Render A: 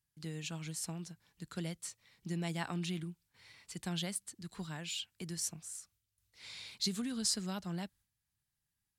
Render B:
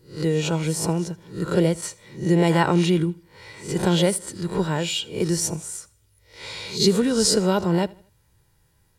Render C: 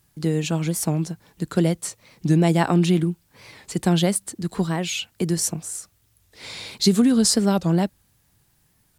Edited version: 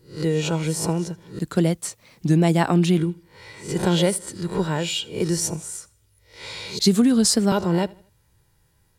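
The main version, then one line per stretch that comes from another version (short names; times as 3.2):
B
1.39–2.98 from C
6.79–7.52 from C
not used: A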